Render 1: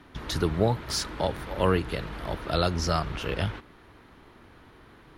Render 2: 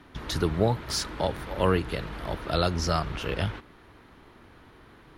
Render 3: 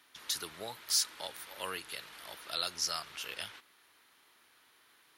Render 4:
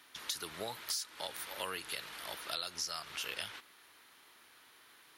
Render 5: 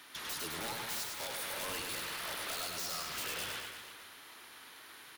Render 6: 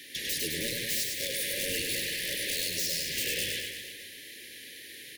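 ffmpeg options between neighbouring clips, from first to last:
-af anull
-af "aderivative,volume=1.5"
-af "acompressor=threshold=0.0112:ratio=8,volume=1.58"
-af "aeval=exprs='(mod(50.1*val(0)+1,2)-1)/50.1':c=same,aeval=exprs='0.0211*(cos(1*acos(clip(val(0)/0.0211,-1,1)))-cos(1*PI/2))+0.00422*(cos(5*acos(clip(val(0)/0.0211,-1,1)))-cos(5*PI/2))':c=same,aecho=1:1:100|210|331|464.1|610.5:0.631|0.398|0.251|0.158|0.1"
-af "asuperstop=centerf=990:order=20:qfactor=0.9,volume=2.66"

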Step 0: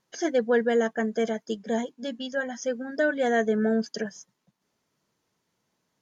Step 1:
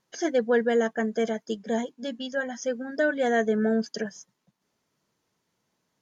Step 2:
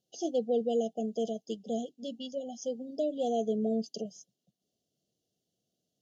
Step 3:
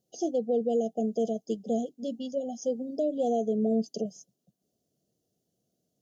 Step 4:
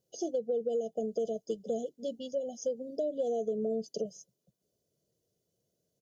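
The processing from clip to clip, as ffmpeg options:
-af anull
-af "afftfilt=real='re*(1-between(b*sr/4096,780,2700))':imag='im*(1-between(b*sr/4096,780,2700))':win_size=4096:overlap=0.75,highpass=42,volume=0.501"
-af "alimiter=level_in=1.06:limit=0.0631:level=0:latency=1:release=232,volume=0.944,acontrast=55,equalizer=f=3000:t=o:w=1.9:g=-10.5"
-af "aecho=1:1:2:0.51,acompressor=threshold=0.0447:ratio=4,volume=0.794"

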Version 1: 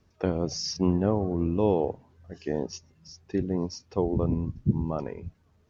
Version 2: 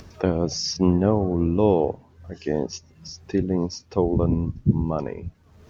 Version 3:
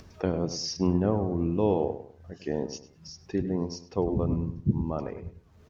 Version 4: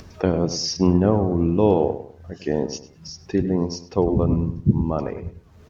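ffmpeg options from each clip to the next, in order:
-af "acompressor=mode=upward:threshold=0.0141:ratio=2.5,volume=1.78"
-filter_complex "[0:a]asplit=2[s0][s1];[s1]adelay=101,lowpass=f=2500:p=1,volume=0.282,asplit=2[s2][s3];[s3]adelay=101,lowpass=f=2500:p=1,volume=0.32,asplit=2[s4][s5];[s5]adelay=101,lowpass=f=2500:p=1,volume=0.32[s6];[s0][s2][s4][s6]amix=inputs=4:normalize=0,volume=0.501"
-af "volume=2.37" -ar 48000 -c:a aac -b:a 128k

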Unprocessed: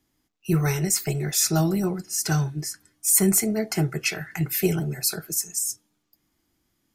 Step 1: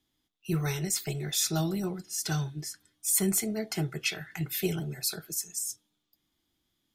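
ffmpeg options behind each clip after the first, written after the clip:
-af "equalizer=f=3500:t=o:w=0.43:g=12.5,volume=0.422"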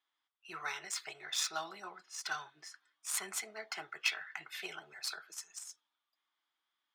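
-af "adynamicsmooth=sensitivity=2.5:basefreq=3500,highpass=f=1100:t=q:w=1.8,volume=0.794"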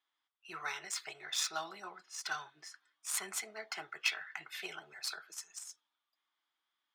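-af anull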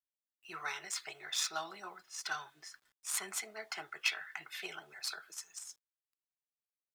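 -af "acrusher=bits=11:mix=0:aa=0.000001"

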